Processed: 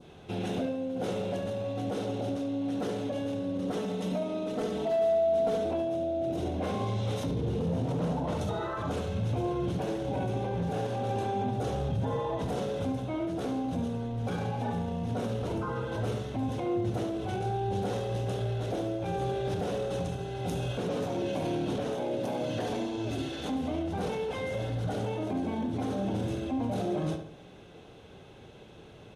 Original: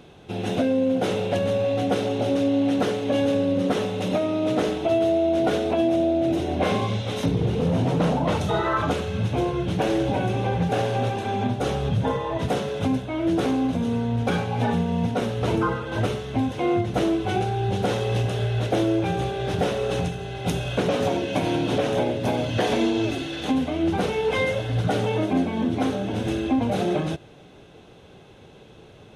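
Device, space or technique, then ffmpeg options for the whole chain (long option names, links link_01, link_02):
clipper into limiter: -filter_complex "[0:a]asettb=1/sr,asplit=3[link_01][link_02][link_03];[link_01]atrim=end=3.774[link_04];[link_02]atrim=start=3.77:end=5.65,asetpts=PTS-STARTPTS,afade=type=in:duration=0.004:curve=qsin,afade=type=out:start_time=1.876:duration=0.004:curve=qsin,aecho=1:1:4.5:0.72,atrim=end_sample=82908[link_05];[link_03]atrim=start=5.646[link_06];[link_04][link_05]acrossfade=duration=0.004:curve1=hsin:curve2=qsin[link_07];[link_07][link_06]acrossfade=duration=0.004:curve1=qsin:curve2=hsin,asettb=1/sr,asplit=3[link_08][link_09][link_10];[link_08]atrim=end=21.914[link_11];[link_09]atrim=start=21.91:end=22.63,asetpts=PTS-STARTPTS,afade=type=in:duration=0.004:curve=qsin,afade=type=out:start_time=0.716:duration=0.004:curve=qsin,highpass=160[link_12];[link_10]atrim=start=22.626[link_13];[link_11][link_12]acrossfade=duration=0.004:curve1=hsin:curve2=qsin[link_14];[link_14][link_13]acrossfade=duration=0.004:curve1=qsin:curve2=hsin,asoftclip=type=hard:threshold=-14dB,alimiter=limit=-21.5dB:level=0:latency=1:release=12,adynamicequalizer=threshold=0.00316:dfrequency=2300:dqfactor=0.83:tfrequency=2300:tqfactor=0.83:attack=5:release=100:ratio=0.375:range=3:mode=cutabove:tftype=bell,asplit=2[link_15][link_16];[link_16]adelay=71,lowpass=frequency=3600:poles=1,volume=-7dB,asplit=2[link_17][link_18];[link_18]adelay=71,lowpass=frequency=3600:poles=1,volume=0.43,asplit=2[link_19][link_20];[link_20]adelay=71,lowpass=frequency=3600:poles=1,volume=0.43,asplit=2[link_21][link_22];[link_22]adelay=71,lowpass=frequency=3600:poles=1,volume=0.43,asplit=2[link_23][link_24];[link_24]adelay=71,lowpass=frequency=3600:poles=1,volume=0.43[link_25];[link_15][link_17][link_19][link_21][link_23][link_25]amix=inputs=6:normalize=0,volume=-3.5dB"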